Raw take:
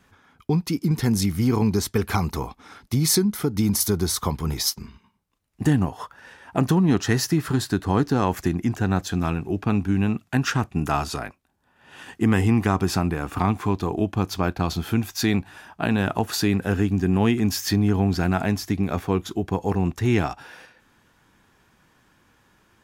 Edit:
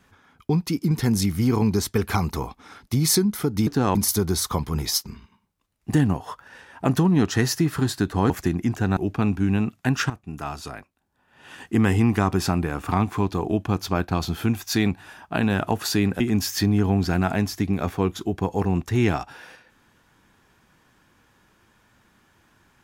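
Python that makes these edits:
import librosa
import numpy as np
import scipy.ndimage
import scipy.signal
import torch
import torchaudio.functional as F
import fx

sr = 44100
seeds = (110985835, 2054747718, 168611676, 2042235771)

y = fx.edit(x, sr, fx.move(start_s=8.02, length_s=0.28, to_s=3.67),
    fx.cut(start_s=8.97, length_s=0.48),
    fx.fade_in_from(start_s=10.58, length_s=1.57, floor_db=-14.0),
    fx.cut(start_s=16.68, length_s=0.62), tone=tone)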